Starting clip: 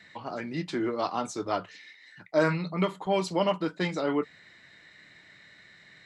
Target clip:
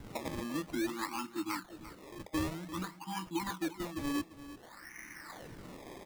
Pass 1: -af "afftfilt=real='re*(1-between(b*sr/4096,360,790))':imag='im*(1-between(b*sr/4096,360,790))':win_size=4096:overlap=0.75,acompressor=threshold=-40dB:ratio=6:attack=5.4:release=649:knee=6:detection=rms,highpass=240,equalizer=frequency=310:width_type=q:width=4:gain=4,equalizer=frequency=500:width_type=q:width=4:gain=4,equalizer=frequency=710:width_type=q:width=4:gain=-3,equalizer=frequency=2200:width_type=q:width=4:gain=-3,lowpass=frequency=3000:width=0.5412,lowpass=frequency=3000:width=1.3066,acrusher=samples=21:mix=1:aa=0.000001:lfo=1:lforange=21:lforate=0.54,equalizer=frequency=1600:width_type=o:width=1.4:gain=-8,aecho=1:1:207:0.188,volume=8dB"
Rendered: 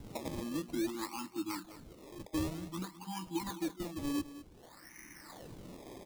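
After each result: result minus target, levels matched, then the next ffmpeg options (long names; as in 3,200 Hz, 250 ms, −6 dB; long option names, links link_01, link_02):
echo 137 ms early; 2,000 Hz band −6.0 dB
-af "afftfilt=real='re*(1-between(b*sr/4096,360,790))':imag='im*(1-between(b*sr/4096,360,790))':win_size=4096:overlap=0.75,acompressor=threshold=-40dB:ratio=6:attack=5.4:release=649:knee=6:detection=rms,highpass=240,equalizer=frequency=310:width_type=q:width=4:gain=4,equalizer=frequency=500:width_type=q:width=4:gain=4,equalizer=frequency=710:width_type=q:width=4:gain=-3,equalizer=frequency=2200:width_type=q:width=4:gain=-3,lowpass=frequency=3000:width=0.5412,lowpass=frequency=3000:width=1.3066,acrusher=samples=21:mix=1:aa=0.000001:lfo=1:lforange=21:lforate=0.54,equalizer=frequency=1600:width_type=o:width=1.4:gain=-8,aecho=1:1:344:0.188,volume=8dB"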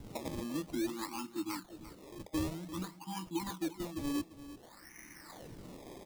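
2,000 Hz band −5.5 dB
-af "afftfilt=real='re*(1-between(b*sr/4096,360,790))':imag='im*(1-between(b*sr/4096,360,790))':win_size=4096:overlap=0.75,acompressor=threshold=-40dB:ratio=6:attack=5.4:release=649:knee=6:detection=rms,highpass=240,equalizer=frequency=310:width_type=q:width=4:gain=4,equalizer=frequency=500:width_type=q:width=4:gain=4,equalizer=frequency=710:width_type=q:width=4:gain=-3,equalizer=frequency=2200:width_type=q:width=4:gain=-3,lowpass=frequency=3000:width=0.5412,lowpass=frequency=3000:width=1.3066,acrusher=samples=21:mix=1:aa=0.000001:lfo=1:lforange=21:lforate=0.54,aecho=1:1:344:0.188,volume=8dB"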